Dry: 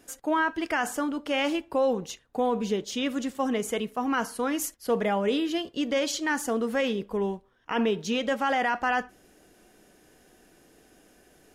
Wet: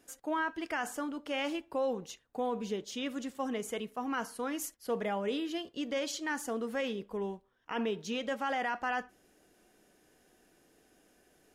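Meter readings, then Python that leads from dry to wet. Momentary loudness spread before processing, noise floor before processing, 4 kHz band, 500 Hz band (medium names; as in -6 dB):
5 LU, -61 dBFS, -7.5 dB, -8.0 dB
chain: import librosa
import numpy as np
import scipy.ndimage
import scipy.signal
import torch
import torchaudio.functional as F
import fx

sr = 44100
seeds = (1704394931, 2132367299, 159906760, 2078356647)

y = fx.low_shelf(x, sr, hz=150.0, db=-3.5)
y = F.gain(torch.from_numpy(y), -7.5).numpy()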